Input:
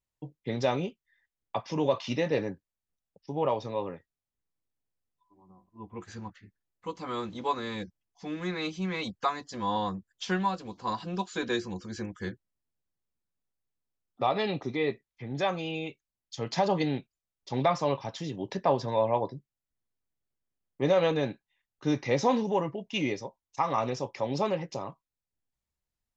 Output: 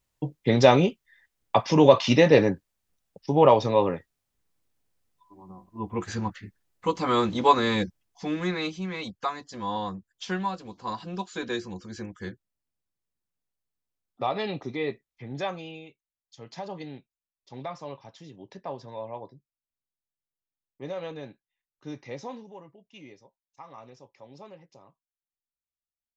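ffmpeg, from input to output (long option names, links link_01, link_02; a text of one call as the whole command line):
ffmpeg -i in.wav -af "volume=11dB,afade=type=out:start_time=7.71:duration=1.14:silence=0.251189,afade=type=out:start_time=15.33:duration=0.53:silence=0.316228,afade=type=out:start_time=22.11:duration=0.4:silence=0.446684" out.wav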